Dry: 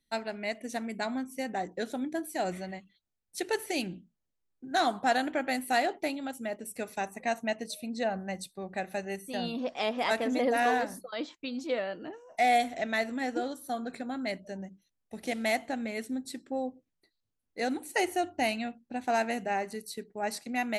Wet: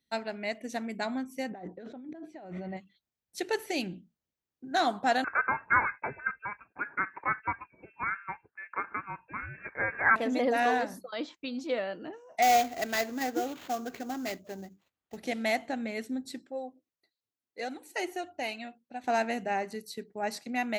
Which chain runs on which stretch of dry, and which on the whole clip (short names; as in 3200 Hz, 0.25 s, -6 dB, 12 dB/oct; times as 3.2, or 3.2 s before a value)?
1.51–2.77 tape spacing loss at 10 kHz 34 dB + notch 1700 Hz, Q 28 + negative-ratio compressor -42 dBFS
5.24–10.16 resonant high-pass 1300 Hz, resonance Q 11 + inverted band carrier 2900 Hz
12.42–15.17 comb 2.6 ms, depth 35% + sample-rate reducer 6800 Hz, jitter 20% + running maximum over 3 samples
16.46–19.04 HPF 240 Hz 6 dB/oct + flange 1.6 Hz, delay 1.2 ms, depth 2.1 ms, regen +42%
whole clip: HPF 58 Hz; bell 9700 Hz -8.5 dB 0.49 oct